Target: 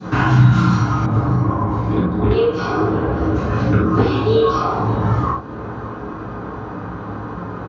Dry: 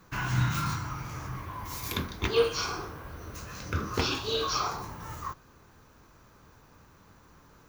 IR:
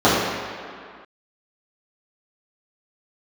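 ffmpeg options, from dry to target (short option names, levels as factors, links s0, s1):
-filter_complex "[0:a]acompressor=threshold=0.00794:ratio=4[s0];[1:a]atrim=start_sample=2205,atrim=end_sample=3969[s1];[s0][s1]afir=irnorm=-1:irlink=0,adynamicequalizer=threshold=0.0251:dfrequency=1200:dqfactor=0.87:tfrequency=1200:tqfactor=0.87:attack=5:release=100:ratio=0.375:range=2.5:mode=cutabove:tftype=bell,asetnsamples=n=441:p=0,asendcmd='1.06 lowpass f 1300;2.31 lowpass f 2400',lowpass=5100,aecho=1:1:588:0.133,volume=1.33"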